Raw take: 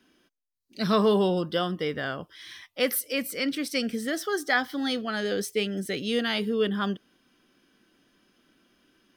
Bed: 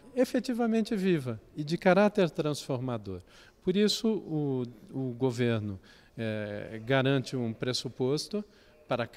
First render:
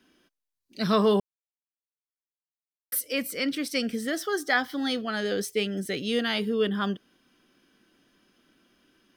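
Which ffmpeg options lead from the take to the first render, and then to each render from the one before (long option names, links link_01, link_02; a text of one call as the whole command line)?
ffmpeg -i in.wav -filter_complex "[0:a]asplit=3[link_01][link_02][link_03];[link_01]atrim=end=1.2,asetpts=PTS-STARTPTS,afade=type=out:start_time=1.196:duration=0.004:curve=hsin[link_04];[link_02]atrim=start=1.2:end=2.92,asetpts=PTS-STARTPTS,volume=0[link_05];[link_03]atrim=start=2.92,asetpts=PTS-STARTPTS,afade=type=in:duration=0.004:curve=hsin[link_06];[link_04][link_05][link_06]concat=n=3:v=0:a=1" out.wav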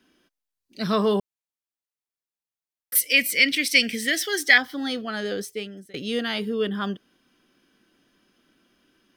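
ffmpeg -i in.wav -filter_complex "[0:a]asettb=1/sr,asplit=3[link_01][link_02][link_03];[link_01]atrim=end=2.954[link_04];[link_02]atrim=start=2.95:end=4.58,asetpts=PTS-STARTPTS,afade=type=in:duration=0.004:curve=qsin,afade=type=out:start_time=1.626:duration=0.004:curve=qsin,highshelf=frequency=1600:width_type=q:width=3:gain=9[link_05];[link_03]atrim=start=4.576[link_06];[link_04][link_05]acrossfade=duration=0.004:curve1=hsin:curve2=qsin[link_07];[link_07][link_06]acrossfade=duration=0.004:curve1=qsin:curve2=hsin,asplit=2[link_08][link_09];[link_08]atrim=end=5.94,asetpts=PTS-STARTPTS,afade=type=out:start_time=5.29:duration=0.65:silence=0.0668344[link_10];[link_09]atrim=start=5.94,asetpts=PTS-STARTPTS,afade=type=in:duration=0.004:curve=hsin:silence=0.0668344[link_11];[link_10][link_11]concat=n=2:v=0:a=1" out.wav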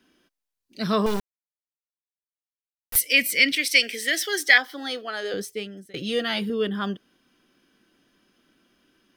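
ffmpeg -i in.wav -filter_complex "[0:a]asettb=1/sr,asplit=3[link_01][link_02][link_03];[link_01]atrim=end=1.064[link_04];[link_02]atrim=start=1.06:end=2.96,asetpts=PTS-STARTPTS,afade=type=in:duration=0.004:curve=qsin,afade=type=out:start_time=1.896:duration=0.004:curve=qsin,acrusher=bits=3:dc=4:mix=0:aa=0.000001[link_05];[link_03]atrim=start=2.956[link_06];[link_04][link_05]acrossfade=duration=0.004:curve1=hsin:curve2=qsin[link_07];[link_07][link_06]acrossfade=duration=0.004:curve1=qsin:curve2=hsin,asettb=1/sr,asplit=3[link_08][link_09][link_10];[link_08]atrim=end=3.534[link_11];[link_09]atrim=start=3.53:end=5.34,asetpts=PTS-STARTPTS,afade=type=in:duration=0.004:curve=qsin,afade=type=out:start_time=1.806:duration=0.004:curve=qsin,highpass=frequency=330:width=0.5412,highpass=frequency=330:width=1.3066[link_12];[link_10]atrim=start=5.336[link_13];[link_11][link_12]acrossfade=duration=0.004:curve1=hsin:curve2=qsin[link_14];[link_14][link_13]acrossfade=duration=0.004:curve1=qsin:curve2=hsin,asettb=1/sr,asplit=3[link_15][link_16][link_17];[link_15]atrim=end=5.964[link_18];[link_16]atrim=start=5.96:end=6.5,asetpts=PTS-STARTPTS,afade=type=in:duration=0.004:curve=qsin,afade=type=out:start_time=0.536:duration=0.004:curve=qsin,aecho=1:1:5.9:0.65,atrim=end_sample=23814[link_19];[link_17]atrim=start=6.496[link_20];[link_18][link_19]acrossfade=duration=0.004:curve1=hsin:curve2=qsin[link_21];[link_21][link_20]acrossfade=duration=0.004:curve1=qsin:curve2=hsin" out.wav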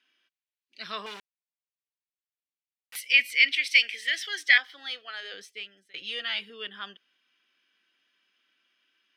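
ffmpeg -i in.wav -af "bandpass=frequency=2600:width_type=q:width=1.6:csg=0" out.wav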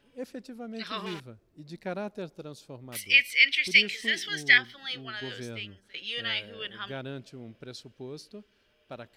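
ffmpeg -i in.wav -i bed.wav -filter_complex "[1:a]volume=-12dB[link_01];[0:a][link_01]amix=inputs=2:normalize=0" out.wav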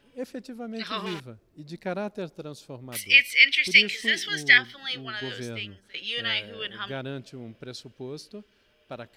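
ffmpeg -i in.wav -af "volume=3.5dB,alimiter=limit=-3dB:level=0:latency=1" out.wav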